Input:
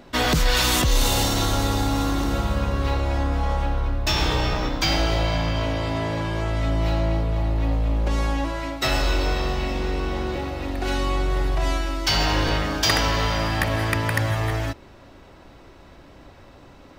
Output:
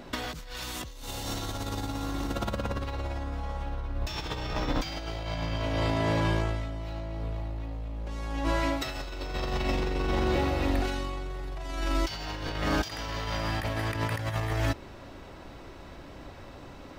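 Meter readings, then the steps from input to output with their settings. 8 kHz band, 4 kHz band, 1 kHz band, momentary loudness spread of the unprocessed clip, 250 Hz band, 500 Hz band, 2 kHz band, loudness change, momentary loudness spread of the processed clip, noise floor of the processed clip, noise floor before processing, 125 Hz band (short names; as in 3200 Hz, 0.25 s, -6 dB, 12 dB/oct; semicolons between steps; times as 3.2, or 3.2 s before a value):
-13.5 dB, -12.0 dB, -8.0 dB, 7 LU, -6.5 dB, -6.5 dB, -9.0 dB, -8.5 dB, 18 LU, -46 dBFS, -47 dBFS, -8.0 dB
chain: negative-ratio compressor -26 dBFS, ratio -0.5; gain -3.5 dB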